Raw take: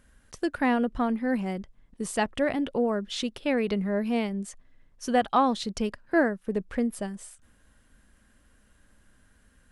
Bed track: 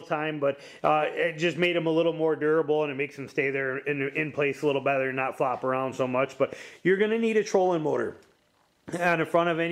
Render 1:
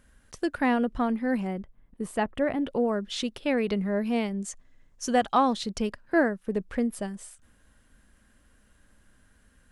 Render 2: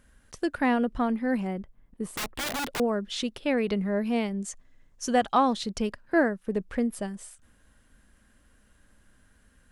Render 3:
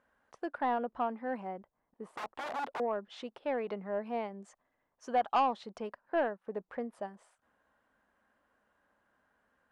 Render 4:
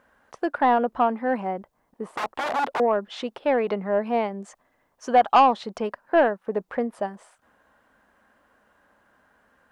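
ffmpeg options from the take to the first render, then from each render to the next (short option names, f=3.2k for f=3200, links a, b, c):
-filter_complex "[0:a]asettb=1/sr,asplit=3[a][b][c];[a]atrim=end=1.474[d];[b]atrim=start=1.47:end=2.67,asetpts=PTS-STARTPTS,afade=t=in:d=0.004:c=qsin,afade=t=out:st=1.196:d=0.004:c=qsin,equalizer=f=5.8k:w=0.67:g=-13[e];[c]atrim=start=2.666[f];[d][e]acrossfade=d=0.004:c1=hsin:c2=qsin[g];[g][f]acrossfade=d=0.004:c1=qsin:c2=hsin,asettb=1/sr,asplit=3[h][i][j];[h]atrim=end=4.414[k];[i]atrim=start=4.41:end=5.53,asetpts=PTS-STARTPTS,afade=t=in:d=0.004:c=qsin,afade=t=out:st=1.116:d=0.004:c=qsin,equalizer=f=6.8k:t=o:w=0.6:g=8[l];[j]atrim=start=5.526[m];[k][l]acrossfade=d=0.004:c1=hsin:c2=qsin[n];[n][m]acrossfade=d=0.004:c1=qsin:c2=hsin"
-filter_complex "[0:a]asettb=1/sr,asplit=3[a][b][c];[a]atrim=end=2.164[d];[b]atrim=start=2.16:end=2.8,asetpts=PTS-STARTPTS,afade=t=in:d=0.004:c=qsin,afade=t=out:st=0.636:d=0.004:c=qsin,aeval=exprs='(mod(20*val(0)+1,2)-1)/20':c=same[e];[c]atrim=start=2.796[f];[d][e]acrossfade=d=0.004:c1=hsin:c2=qsin[g];[g][f]acrossfade=d=0.004:c1=qsin:c2=hsin"
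-af "bandpass=f=840:t=q:w=1.6:csg=0,asoftclip=type=tanh:threshold=-21dB"
-af "volume=12dB"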